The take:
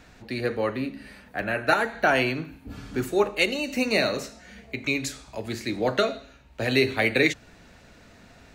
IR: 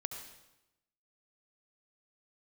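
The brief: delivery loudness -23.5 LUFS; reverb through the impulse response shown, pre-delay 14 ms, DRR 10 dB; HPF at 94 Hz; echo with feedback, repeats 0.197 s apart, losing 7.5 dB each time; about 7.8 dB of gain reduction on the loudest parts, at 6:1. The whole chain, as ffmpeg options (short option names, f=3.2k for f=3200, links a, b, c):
-filter_complex "[0:a]highpass=94,acompressor=threshold=-24dB:ratio=6,aecho=1:1:197|394|591|788|985:0.422|0.177|0.0744|0.0312|0.0131,asplit=2[a][b];[1:a]atrim=start_sample=2205,adelay=14[c];[b][c]afir=irnorm=-1:irlink=0,volume=-9.5dB[d];[a][d]amix=inputs=2:normalize=0,volume=6dB"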